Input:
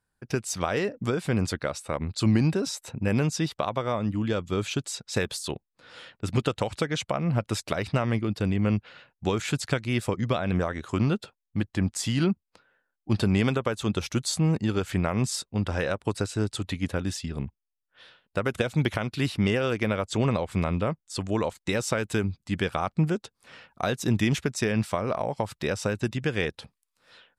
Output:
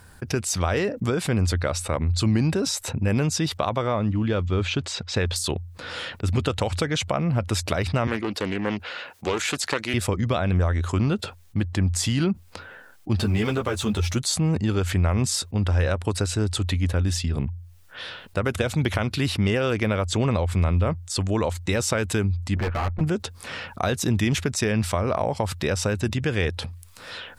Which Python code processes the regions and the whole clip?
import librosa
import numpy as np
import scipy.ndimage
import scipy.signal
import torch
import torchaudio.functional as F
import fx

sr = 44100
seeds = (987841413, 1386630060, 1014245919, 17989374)

y = fx.chain(x, sr, fx.block_float(bits=7),
    fx.lowpass(hz=3900.0, slope=12), at=(3.87, 5.36))
y = fx.chain(y, sr, fx.highpass(hz=370.0, slope=12),
    fx.doppler_dist(depth_ms=0.27), at=(8.07, 9.94))
y = fx.chain(y, sr, fx.law_mismatch(coded='mu'),
    fx.ensemble(), at=(13.18, 14.16))
y = fx.chain(y, sr, fx.lower_of_two(delay_ms=8.6),
    fx.lowpass(hz=2200.0, slope=24),
    fx.clip_hard(threshold_db=-27.5), at=(22.56, 23.01))
y = fx.peak_eq(y, sr, hz=87.0, db=14.0, octaves=0.24)
y = fx.env_flatten(y, sr, amount_pct=50)
y = F.gain(torch.from_numpy(y), -1.5).numpy()